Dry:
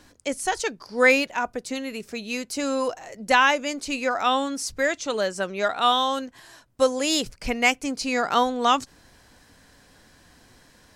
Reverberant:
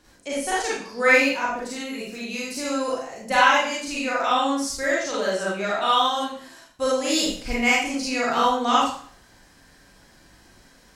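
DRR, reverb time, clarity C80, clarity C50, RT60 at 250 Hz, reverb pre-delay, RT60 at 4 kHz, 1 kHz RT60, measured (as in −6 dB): −7.5 dB, 0.50 s, 4.0 dB, −1.5 dB, 0.50 s, 28 ms, 0.50 s, 0.50 s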